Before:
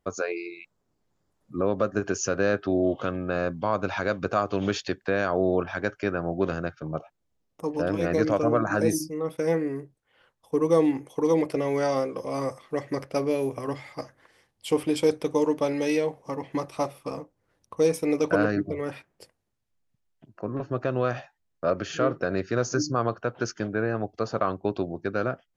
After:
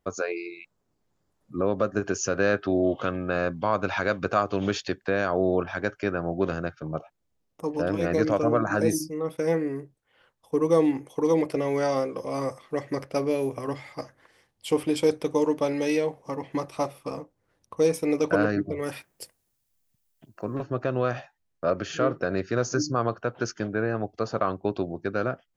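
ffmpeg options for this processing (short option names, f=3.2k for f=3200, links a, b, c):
-filter_complex "[0:a]asettb=1/sr,asplit=3[a][b][c];[a]atrim=end=2.354[d];[b]atrim=start=2.35:end=4.43,asetpts=PTS-STARTPTS,afade=t=in:d=0.004:c=qsin,afade=t=out:st=2.076:d=0.004:c=qsin,equalizer=f=2.1k:t=o:w=2.3:g=3[e];[c]atrim=start=4.426[f];[d][e]acrossfade=d=0.004:c1=hsin:c2=qsin[g];[g][f]acrossfade=d=0.004:c1=qsin:c2=hsin,asettb=1/sr,asplit=3[h][i][j];[h]atrim=end=18.824[k];[i]atrim=start=18.82:end=20.63,asetpts=PTS-STARTPTS,afade=t=in:d=0.004:c=qsin,afade=t=out:st=1.806:d=0.004:c=qsin,aemphasis=mode=production:type=75kf[l];[j]atrim=start=20.626[m];[k][l]acrossfade=d=0.004:c1=hsin:c2=qsin[n];[n][m]acrossfade=d=0.004:c1=qsin:c2=hsin"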